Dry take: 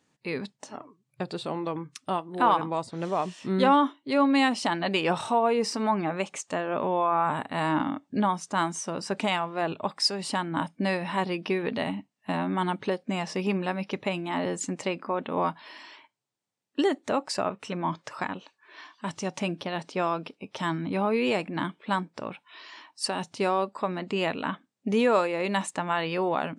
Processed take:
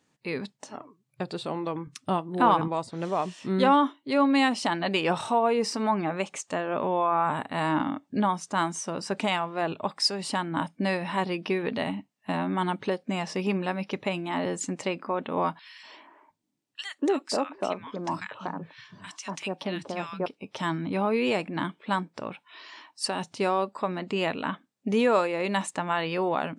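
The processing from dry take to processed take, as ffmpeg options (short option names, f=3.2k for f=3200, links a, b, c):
-filter_complex "[0:a]asettb=1/sr,asplit=3[a][b][c];[a]atrim=end=1.874[d];[b]atrim=start=1.87:end=2.68,asetpts=PTS-STARTPTS,afade=t=in:d=0.004:c=qsin,afade=t=out:st=0.806:d=0.004:c=qsin,lowshelf=f=230:g=10.5[e];[c]atrim=start=2.676[f];[d][e]acrossfade=d=0.004:c1=hsin:c2=qsin[g];[g][f]acrossfade=d=0.004:c1=qsin:c2=hsin,asettb=1/sr,asplit=3[h][i][j];[h]atrim=end=15.594[k];[i]atrim=start=15.59:end=20.26,asetpts=PTS-STARTPTS,afade=t=in:d=0.004:c=qsin,afade=t=out:st=4.666:d=0.004:c=qsin,acrossover=split=160|1400[l][m][n];[m]adelay=240[o];[l]adelay=710[p];[p][o][n]amix=inputs=3:normalize=0,atrim=end_sample=205947[q];[j]atrim=start=20.256[r];[k][q]acrossfade=d=0.004:c1=hsin:c2=qsin[s];[s][r]acrossfade=d=0.004:c1=qsin:c2=hsin"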